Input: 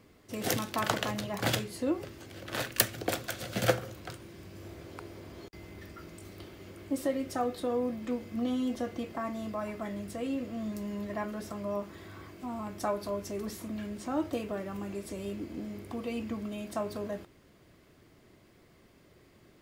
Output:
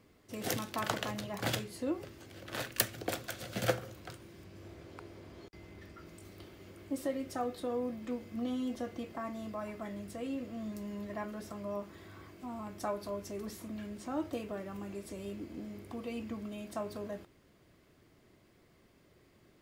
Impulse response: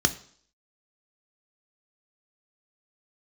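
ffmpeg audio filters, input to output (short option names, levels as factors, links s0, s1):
-filter_complex "[0:a]asettb=1/sr,asplit=3[s0][s1][s2];[s0]atrim=end=4.444[s3];[s1]atrim=start=4.44:end=6.06,asetpts=PTS-STARTPTS,afade=t=in:d=0.004:c=qsin,afade=t=out:st=1.616:d=0.004:c=qsin,highshelf=f=9400:g=-8[s4];[s2]atrim=start=6.056[s5];[s3][s4]acrossfade=d=0.004:c1=hsin:c2=qsin[s6];[s6][s5]acrossfade=d=0.004:c1=qsin:c2=hsin,volume=0.596"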